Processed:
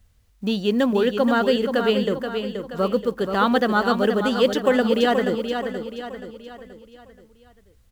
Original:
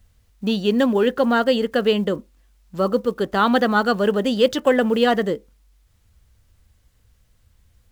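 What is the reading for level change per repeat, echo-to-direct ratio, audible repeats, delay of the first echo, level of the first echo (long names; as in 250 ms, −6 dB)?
−7.0 dB, −6.0 dB, 5, 478 ms, −7.0 dB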